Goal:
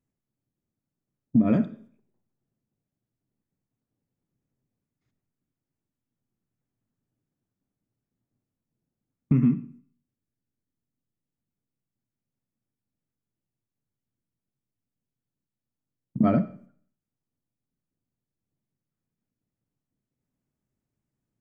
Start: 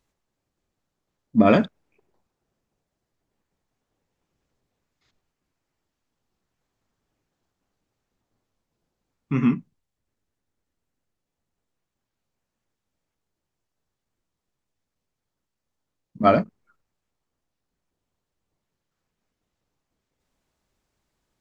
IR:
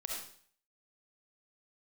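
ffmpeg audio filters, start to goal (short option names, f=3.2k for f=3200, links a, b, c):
-filter_complex "[0:a]agate=range=-14dB:threshold=-51dB:ratio=16:detection=peak,equalizer=f=125:t=o:w=1:g=12,equalizer=f=250:t=o:w=1:g=9,equalizer=f=1k:t=o:w=1:g=-3,equalizer=f=4k:t=o:w=1:g=-10,acompressor=threshold=-20dB:ratio=6,asplit=2[a][b];[1:a]atrim=start_sample=2205[c];[b][c]afir=irnorm=-1:irlink=0,volume=-12.5dB[d];[a][d]amix=inputs=2:normalize=0"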